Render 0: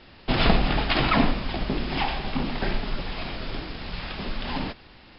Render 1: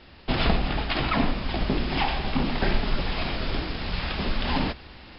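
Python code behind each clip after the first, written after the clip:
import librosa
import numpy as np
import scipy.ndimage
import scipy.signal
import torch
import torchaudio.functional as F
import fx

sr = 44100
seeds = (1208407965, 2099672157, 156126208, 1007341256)

y = fx.peak_eq(x, sr, hz=68.0, db=7.5, octaves=0.3)
y = fx.rider(y, sr, range_db=4, speed_s=0.5)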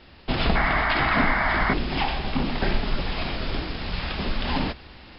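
y = fx.spec_paint(x, sr, seeds[0], shape='noise', start_s=0.55, length_s=1.19, low_hz=600.0, high_hz=2300.0, level_db=-24.0)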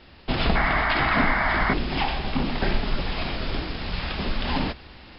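y = x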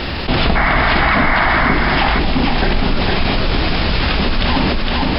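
y = x + 10.0 ** (-5.0 / 20.0) * np.pad(x, (int(460 * sr / 1000.0), 0))[:len(x)]
y = fx.env_flatten(y, sr, amount_pct=70)
y = y * 10.0 ** (5.0 / 20.0)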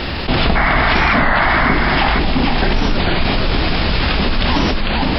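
y = fx.record_warp(x, sr, rpm=33.33, depth_cents=160.0)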